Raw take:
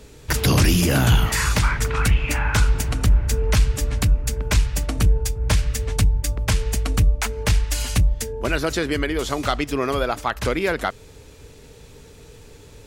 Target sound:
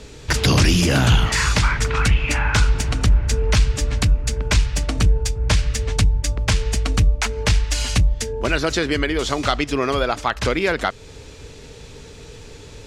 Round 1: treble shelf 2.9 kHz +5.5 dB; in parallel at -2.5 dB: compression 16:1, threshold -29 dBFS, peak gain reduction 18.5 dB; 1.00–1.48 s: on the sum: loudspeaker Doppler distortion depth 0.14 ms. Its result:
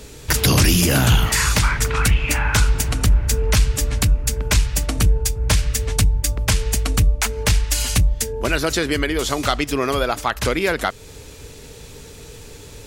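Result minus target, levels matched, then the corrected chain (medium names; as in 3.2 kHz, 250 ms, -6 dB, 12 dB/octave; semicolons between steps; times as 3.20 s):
8 kHz band +4.0 dB
low-pass 6.2 kHz 12 dB/octave; treble shelf 2.9 kHz +5.5 dB; in parallel at -2.5 dB: compression 16:1, threshold -29 dBFS, peak gain reduction 18.5 dB; 1.00–1.48 s: on the sum: loudspeaker Doppler distortion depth 0.14 ms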